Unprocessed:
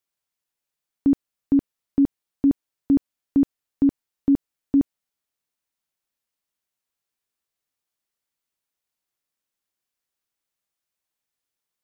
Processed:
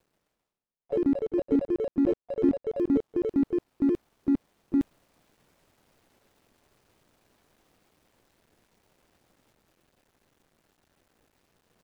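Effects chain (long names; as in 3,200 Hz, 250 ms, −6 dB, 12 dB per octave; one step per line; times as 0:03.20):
running median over 41 samples
reversed playback
upward compression, threshold −33 dBFS
reversed playback
delay with pitch and tempo change per echo 131 ms, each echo +4 semitones, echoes 3
pitch-shifted copies added −3 semitones −17 dB, +4 semitones −17 dB
level −6 dB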